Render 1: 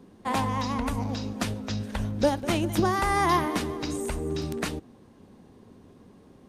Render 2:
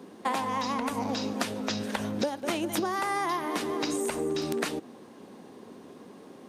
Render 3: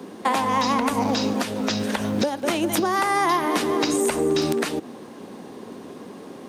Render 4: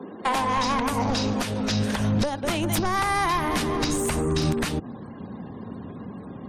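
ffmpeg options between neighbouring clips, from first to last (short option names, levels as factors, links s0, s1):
-af "highpass=270,acompressor=threshold=0.02:ratio=12,volume=2.51"
-filter_complex "[0:a]acrossover=split=190|1300[s0][s1][s2];[s0]acrusher=bits=4:mode=log:mix=0:aa=0.000001[s3];[s3][s1][s2]amix=inputs=3:normalize=0,alimiter=limit=0.106:level=0:latency=1:release=230,volume=2.82"
-af "aeval=exprs='0.316*sin(PI/2*1.78*val(0)/0.316)':c=same,asubboost=boost=10:cutoff=120,afftfilt=real='re*gte(hypot(re,im),0.0126)':imag='im*gte(hypot(re,im),0.0126)':win_size=1024:overlap=0.75,volume=0.376"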